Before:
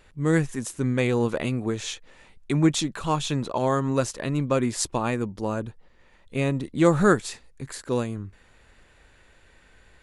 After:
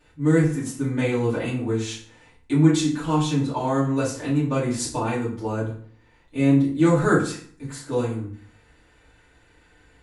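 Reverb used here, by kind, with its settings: FDN reverb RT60 0.51 s, low-frequency decay 1.25×, high-frequency decay 0.75×, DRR -9 dB; trim -9.5 dB

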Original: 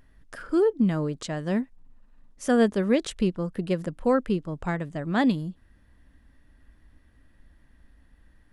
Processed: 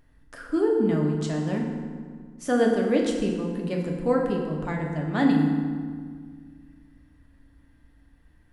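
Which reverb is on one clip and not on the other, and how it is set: FDN reverb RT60 1.8 s, low-frequency decay 1.35×, high-frequency decay 0.65×, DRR -0.5 dB; trim -3.5 dB

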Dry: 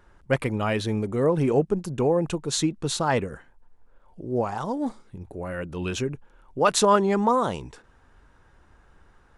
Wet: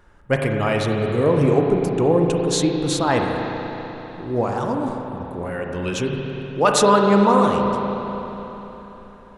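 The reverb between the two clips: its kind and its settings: spring tank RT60 3.8 s, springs 35/49 ms, chirp 60 ms, DRR 1 dB; trim +3 dB

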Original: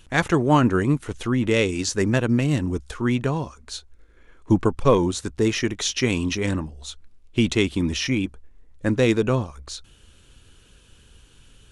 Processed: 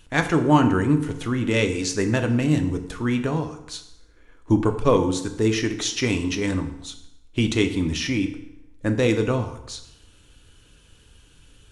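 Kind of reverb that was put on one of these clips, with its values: FDN reverb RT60 0.87 s, low-frequency decay 1×, high-frequency decay 0.8×, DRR 6 dB; trim -1.5 dB

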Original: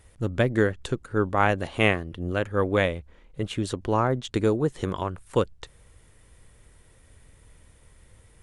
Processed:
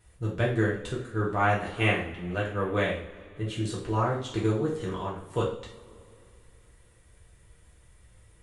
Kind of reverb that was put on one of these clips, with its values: two-slope reverb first 0.45 s, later 2.9 s, from -22 dB, DRR -5.5 dB; trim -9.5 dB

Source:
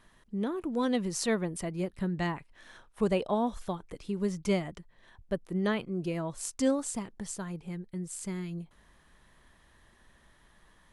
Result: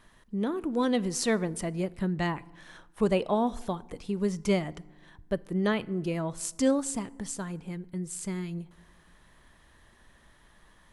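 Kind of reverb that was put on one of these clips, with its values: FDN reverb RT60 1.2 s, low-frequency decay 1.45×, high-frequency decay 0.55×, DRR 19 dB; trim +2.5 dB

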